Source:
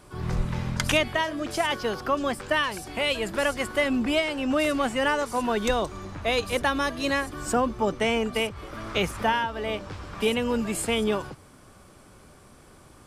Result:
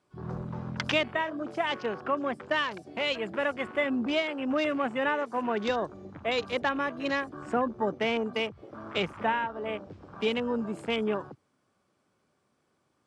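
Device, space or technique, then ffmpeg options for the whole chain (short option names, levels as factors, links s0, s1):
over-cleaned archive recording: -af "highpass=140,lowpass=7000,afwtdn=0.0178,volume=0.668"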